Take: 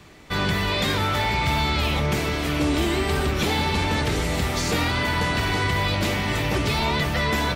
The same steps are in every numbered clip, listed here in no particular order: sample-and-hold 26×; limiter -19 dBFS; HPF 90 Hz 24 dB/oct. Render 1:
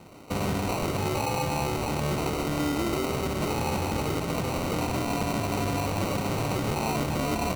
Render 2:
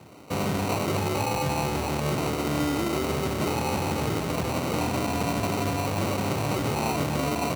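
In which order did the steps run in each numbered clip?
limiter > HPF > sample-and-hold; sample-and-hold > limiter > HPF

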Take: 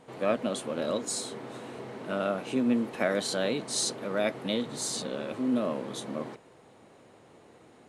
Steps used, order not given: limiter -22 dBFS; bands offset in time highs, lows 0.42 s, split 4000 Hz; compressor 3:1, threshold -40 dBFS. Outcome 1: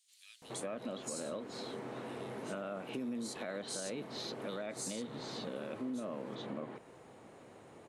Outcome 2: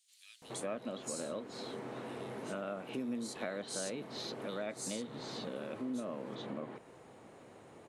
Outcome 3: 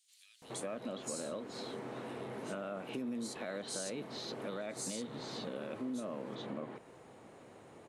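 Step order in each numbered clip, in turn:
bands offset in time > limiter > compressor; bands offset in time > compressor > limiter; limiter > bands offset in time > compressor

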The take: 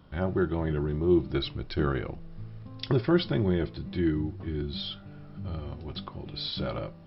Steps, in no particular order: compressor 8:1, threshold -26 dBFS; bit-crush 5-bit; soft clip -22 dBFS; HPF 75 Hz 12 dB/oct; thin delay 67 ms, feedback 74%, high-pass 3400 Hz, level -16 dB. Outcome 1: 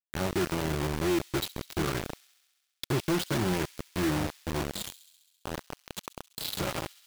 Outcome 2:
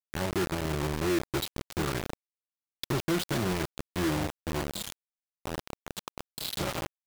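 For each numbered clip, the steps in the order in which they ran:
HPF > soft clip > compressor > bit-crush > thin delay; thin delay > soft clip > compressor > HPF > bit-crush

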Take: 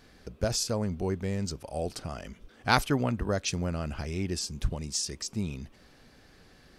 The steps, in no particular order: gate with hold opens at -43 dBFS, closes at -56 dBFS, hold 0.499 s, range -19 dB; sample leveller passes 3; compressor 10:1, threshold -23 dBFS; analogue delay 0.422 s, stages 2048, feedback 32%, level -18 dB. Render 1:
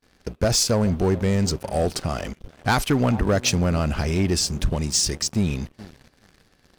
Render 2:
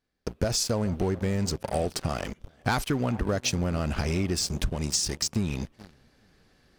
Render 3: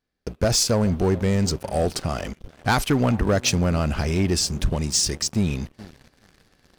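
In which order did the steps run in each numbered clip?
analogue delay > compressor > sample leveller > gate with hold; analogue delay > gate with hold > sample leveller > compressor; compressor > analogue delay > gate with hold > sample leveller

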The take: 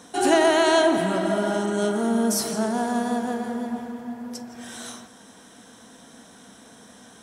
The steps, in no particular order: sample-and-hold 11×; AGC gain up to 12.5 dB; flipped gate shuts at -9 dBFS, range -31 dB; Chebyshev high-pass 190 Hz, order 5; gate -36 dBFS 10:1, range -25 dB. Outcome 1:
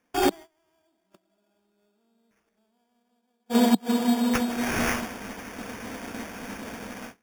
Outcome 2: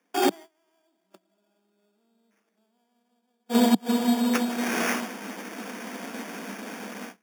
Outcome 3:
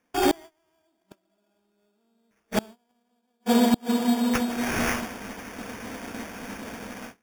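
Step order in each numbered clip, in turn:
AGC > flipped gate > Chebyshev high-pass > gate > sample-and-hold; AGC > flipped gate > sample-and-hold > gate > Chebyshev high-pass; AGC > Chebyshev high-pass > flipped gate > gate > sample-and-hold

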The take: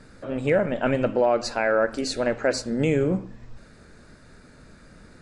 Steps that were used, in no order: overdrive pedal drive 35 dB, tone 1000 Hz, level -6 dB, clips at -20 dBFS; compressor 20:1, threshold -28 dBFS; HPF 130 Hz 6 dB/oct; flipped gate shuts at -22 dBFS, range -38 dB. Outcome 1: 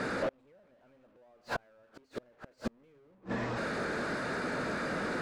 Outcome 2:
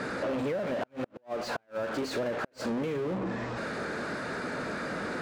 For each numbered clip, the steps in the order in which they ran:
HPF > overdrive pedal > flipped gate > compressor; overdrive pedal > HPF > compressor > flipped gate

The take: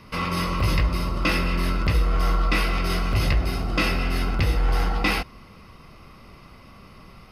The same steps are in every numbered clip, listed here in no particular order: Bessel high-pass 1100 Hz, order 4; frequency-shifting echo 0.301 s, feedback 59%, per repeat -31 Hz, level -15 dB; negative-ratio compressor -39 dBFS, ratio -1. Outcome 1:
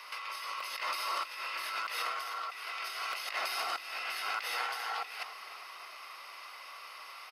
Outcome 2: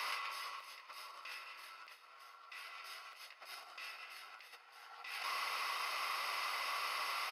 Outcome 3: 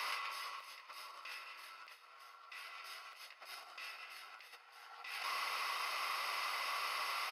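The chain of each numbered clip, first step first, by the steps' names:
Bessel high-pass > negative-ratio compressor > frequency-shifting echo; negative-ratio compressor > Bessel high-pass > frequency-shifting echo; negative-ratio compressor > frequency-shifting echo > Bessel high-pass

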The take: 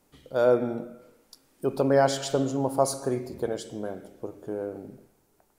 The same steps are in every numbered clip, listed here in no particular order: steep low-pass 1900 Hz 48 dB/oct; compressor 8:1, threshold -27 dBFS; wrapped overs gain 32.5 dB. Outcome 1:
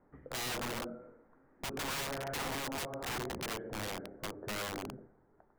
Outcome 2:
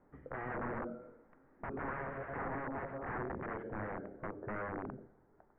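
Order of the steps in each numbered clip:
steep low-pass > compressor > wrapped overs; compressor > wrapped overs > steep low-pass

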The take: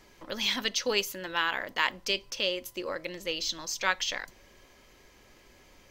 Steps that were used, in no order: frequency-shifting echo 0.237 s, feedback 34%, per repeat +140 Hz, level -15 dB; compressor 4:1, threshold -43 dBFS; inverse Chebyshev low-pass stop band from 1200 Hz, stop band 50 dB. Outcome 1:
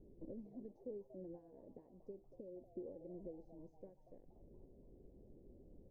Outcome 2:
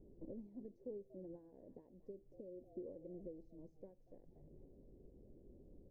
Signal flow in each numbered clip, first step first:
compressor > inverse Chebyshev low-pass > frequency-shifting echo; frequency-shifting echo > compressor > inverse Chebyshev low-pass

